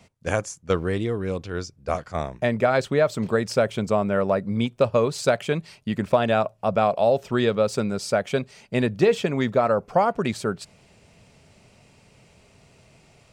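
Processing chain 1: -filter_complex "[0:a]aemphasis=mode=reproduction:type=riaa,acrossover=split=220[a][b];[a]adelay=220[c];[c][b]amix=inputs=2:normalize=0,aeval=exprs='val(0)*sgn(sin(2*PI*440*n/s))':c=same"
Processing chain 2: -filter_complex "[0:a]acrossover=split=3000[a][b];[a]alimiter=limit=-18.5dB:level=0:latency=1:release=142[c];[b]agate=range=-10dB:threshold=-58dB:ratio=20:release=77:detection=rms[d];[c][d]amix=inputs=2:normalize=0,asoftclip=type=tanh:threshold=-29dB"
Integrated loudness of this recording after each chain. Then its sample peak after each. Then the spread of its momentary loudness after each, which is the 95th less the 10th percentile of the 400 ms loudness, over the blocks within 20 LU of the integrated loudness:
-19.0, -34.5 LUFS; -2.0, -29.0 dBFS; 6, 5 LU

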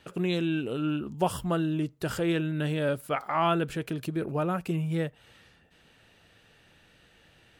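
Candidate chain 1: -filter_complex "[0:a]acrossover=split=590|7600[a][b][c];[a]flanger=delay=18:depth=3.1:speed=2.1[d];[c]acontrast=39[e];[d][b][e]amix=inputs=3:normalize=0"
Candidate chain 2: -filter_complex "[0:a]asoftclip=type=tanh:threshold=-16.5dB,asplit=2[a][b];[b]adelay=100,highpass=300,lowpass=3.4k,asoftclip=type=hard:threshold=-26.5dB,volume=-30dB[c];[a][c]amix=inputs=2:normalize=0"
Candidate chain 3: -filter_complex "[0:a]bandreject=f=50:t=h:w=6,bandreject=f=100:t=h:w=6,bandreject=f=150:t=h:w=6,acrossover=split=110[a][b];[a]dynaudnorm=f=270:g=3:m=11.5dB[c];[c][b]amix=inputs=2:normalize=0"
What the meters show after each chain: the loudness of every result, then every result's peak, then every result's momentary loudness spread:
-31.0, -30.0, -28.5 LUFS; -14.5, -17.5, -11.0 dBFS; 6, 5, 5 LU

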